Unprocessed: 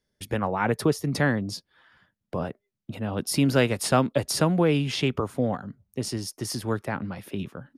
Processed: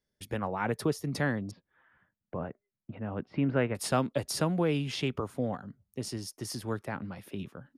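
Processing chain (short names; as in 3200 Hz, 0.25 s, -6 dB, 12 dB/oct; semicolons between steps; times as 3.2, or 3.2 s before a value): 1.51–3.75 LPF 2300 Hz 24 dB/oct; gain -6.5 dB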